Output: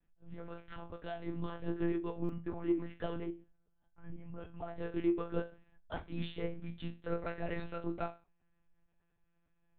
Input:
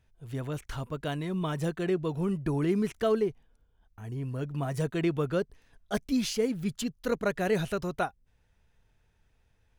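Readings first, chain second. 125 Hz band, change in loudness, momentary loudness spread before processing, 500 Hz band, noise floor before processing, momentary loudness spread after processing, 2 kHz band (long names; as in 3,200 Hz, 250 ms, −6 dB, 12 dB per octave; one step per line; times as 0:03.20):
−11.0 dB, −9.0 dB, 9 LU, −10.0 dB, −70 dBFS, 14 LU, −10.5 dB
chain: adaptive Wiener filter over 9 samples
resonators tuned to a chord A#2 fifth, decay 0.29 s
in parallel at −6 dB: soft clipping −33.5 dBFS, distortion −14 dB
on the sum: one-pitch LPC vocoder at 8 kHz 170 Hz
buffer that repeats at 0:02.24, samples 256, times 8
level +1.5 dB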